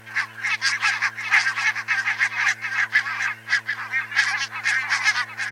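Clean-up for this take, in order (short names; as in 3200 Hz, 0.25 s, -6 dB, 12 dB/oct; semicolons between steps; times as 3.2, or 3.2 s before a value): clip repair -7.5 dBFS; de-click; de-hum 111.9 Hz, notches 9; inverse comb 0.737 s -6.5 dB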